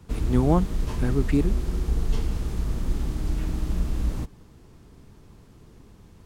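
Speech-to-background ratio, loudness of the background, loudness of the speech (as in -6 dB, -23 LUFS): 4.0 dB, -29.5 LUFS, -25.5 LUFS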